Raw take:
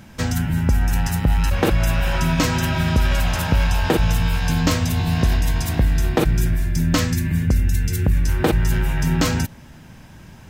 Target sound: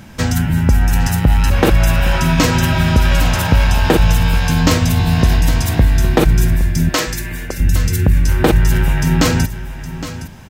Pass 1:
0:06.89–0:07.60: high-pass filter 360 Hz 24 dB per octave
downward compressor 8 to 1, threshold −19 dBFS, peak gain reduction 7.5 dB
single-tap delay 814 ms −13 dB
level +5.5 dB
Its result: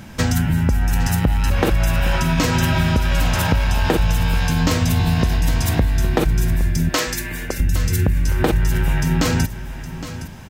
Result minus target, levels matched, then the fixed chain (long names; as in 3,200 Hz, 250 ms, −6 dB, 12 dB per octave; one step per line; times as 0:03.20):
downward compressor: peak gain reduction +7.5 dB
0:06.89–0:07.60: high-pass filter 360 Hz 24 dB per octave
single-tap delay 814 ms −13 dB
level +5.5 dB